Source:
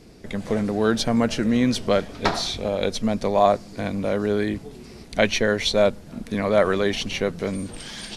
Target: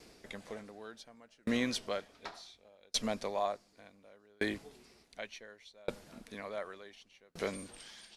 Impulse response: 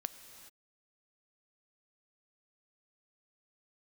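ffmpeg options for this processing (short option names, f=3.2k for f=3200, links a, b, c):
-af "highpass=f=54:p=1,equalizer=f=120:w=0.36:g=-13,aeval=exprs='val(0)*pow(10,-37*if(lt(mod(0.68*n/s,1),2*abs(0.68)/1000),1-mod(0.68*n/s,1)/(2*abs(0.68)/1000),(mod(0.68*n/s,1)-2*abs(0.68)/1000)/(1-2*abs(0.68)/1000))/20)':c=same,volume=-1dB"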